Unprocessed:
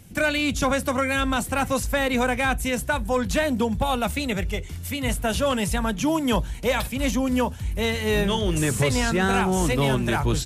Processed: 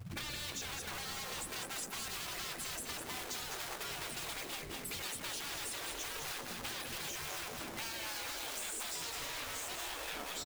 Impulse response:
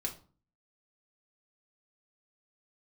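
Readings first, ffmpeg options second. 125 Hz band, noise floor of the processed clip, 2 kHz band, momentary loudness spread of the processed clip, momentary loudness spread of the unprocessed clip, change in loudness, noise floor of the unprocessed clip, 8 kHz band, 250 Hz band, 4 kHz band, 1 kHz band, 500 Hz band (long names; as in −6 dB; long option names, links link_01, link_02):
−26.0 dB, −46 dBFS, −16.5 dB, 2 LU, 4 LU, −16.0 dB, −35 dBFS, −8.5 dB, −28.0 dB, −10.0 dB, −19.0 dB, −24.5 dB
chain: -filter_complex "[0:a]afftdn=noise_reduction=34:noise_floor=-33,asplit=2[link_01][link_02];[link_02]highpass=frequency=720:poles=1,volume=23dB,asoftclip=type=tanh:threshold=-11.5dB[link_03];[link_01][link_03]amix=inputs=2:normalize=0,lowpass=frequency=1200:poles=1,volume=-6dB,equalizer=frequency=125:width_type=o:width=1:gain=8,equalizer=frequency=1000:width_type=o:width=1:gain=-11,equalizer=frequency=4000:width_type=o:width=1:gain=6,equalizer=frequency=8000:width_type=o:width=1:gain=6,acrusher=bits=3:mode=log:mix=0:aa=0.000001,dynaudnorm=framelen=330:gausssize=7:maxgain=4.5dB,afftfilt=real='re*lt(hypot(re,im),0.178)':imag='im*lt(hypot(re,im),0.178)':win_size=1024:overlap=0.75,asplit=2[link_04][link_05];[link_05]aecho=0:1:205|410|615|820:0.501|0.15|0.0451|0.0135[link_06];[link_04][link_06]amix=inputs=2:normalize=0,adynamicequalizer=threshold=0.0141:dfrequency=3200:dqfactor=0.73:tfrequency=3200:tqfactor=0.73:attack=5:release=100:ratio=0.375:range=1.5:mode=cutabove:tftype=bell,acompressor=threshold=-44dB:ratio=4,bandreject=frequency=52.88:width_type=h:width=4,bandreject=frequency=105.76:width_type=h:width=4,bandreject=frequency=158.64:width_type=h:width=4,bandreject=frequency=211.52:width_type=h:width=4,bandreject=frequency=264.4:width_type=h:width=4,bandreject=frequency=317.28:width_type=h:width=4,bandreject=frequency=370.16:width_type=h:width=4,bandreject=frequency=423.04:width_type=h:width=4,bandreject=frequency=475.92:width_type=h:width=4,bandreject=frequency=528.8:width_type=h:width=4,bandreject=frequency=581.68:width_type=h:width=4,bandreject=frequency=634.56:width_type=h:width=4,bandreject=frequency=687.44:width_type=h:width=4,bandreject=frequency=740.32:width_type=h:width=4,bandreject=frequency=793.2:width_type=h:width=4,bandreject=frequency=846.08:width_type=h:width=4,bandreject=frequency=898.96:width_type=h:width=4,bandreject=frequency=951.84:width_type=h:width=4,bandreject=frequency=1004.72:width_type=h:width=4,bandreject=frequency=1057.6:width_type=h:width=4,bandreject=frequency=1110.48:width_type=h:width=4,bandreject=frequency=1163.36:width_type=h:width=4,bandreject=frequency=1216.24:width_type=h:width=4,bandreject=frequency=1269.12:width_type=h:width=4,bandreject=frequency=1322:width_type=h:width=4,bandreject=frequency=1374.88:width_type=h:width=4,bandreject=frequency=1427.76:width_type=h:width=4,bandreject=frequency=1480.64:width_type=h:width=4,bandreject=frequency=1533.52:width_type=h:width=4,bandreject=frequency=1586.4:width_type=h:width=4,bandreject=frequency=1639.28:width_type=h:width=4,bandreject=frequency=1692.16:width_type=h:width=4,bandreject=frequency=1745.04:width_type=h:width=4,bandreject=frequency=1797.92:width_type=h:width=4,bandreject=frequency=1850.8:width_type=h:width=4,bandreject=frequency=1903.68:width_type=h:width=4,bandreject=frequency=1956.56:width_type=h:width=4,bandreject=frequency=2009.44:width_type=h:width=4,volume=2dB"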